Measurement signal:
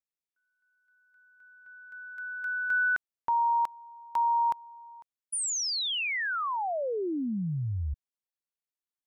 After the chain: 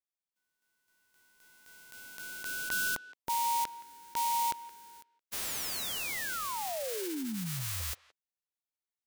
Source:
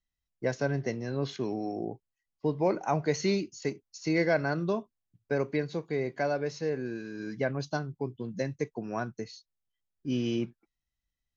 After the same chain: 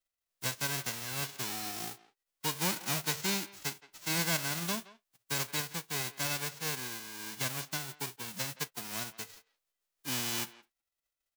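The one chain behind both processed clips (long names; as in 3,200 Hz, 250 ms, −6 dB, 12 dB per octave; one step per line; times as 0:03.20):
spectral envelope flattened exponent 0.1
far-end echo of a speakerphone 170 ms, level −18 dB
gain into a clipping stage and back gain 17.5 dB
level −5 dB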